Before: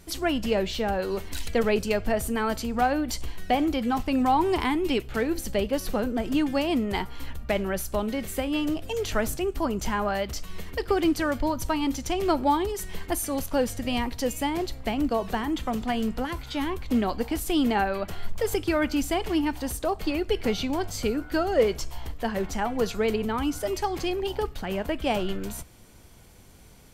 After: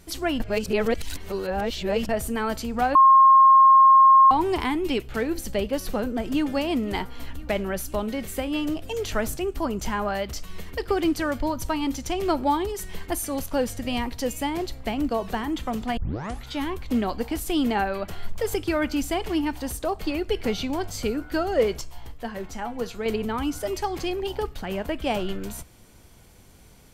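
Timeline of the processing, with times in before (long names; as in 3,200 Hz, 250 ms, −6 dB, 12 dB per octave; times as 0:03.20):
0:00.40–0:02.09: reverse
0:02.95–0:04.31: beep over 1,070 Hz −10 dBFS
0:05.86–0:06.51: delay throw 510 ms, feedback 65%, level −18 dB
0:15.97: tape start 0.49 s
0:21.81–0:23.06: tuned comb filter 120 Hz, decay 0.19 s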